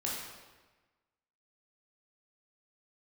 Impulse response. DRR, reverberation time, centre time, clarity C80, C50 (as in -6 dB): -5.0 dB, 1.3 s, 75 ms, 3.0 dB, 0.0 dB